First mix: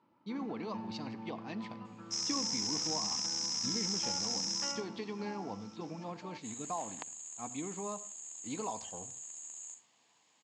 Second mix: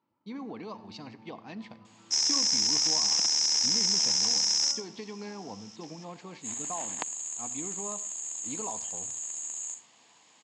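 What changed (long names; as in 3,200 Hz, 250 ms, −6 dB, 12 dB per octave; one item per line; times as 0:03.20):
first sound −9.0 dB
second sound +10.0 dB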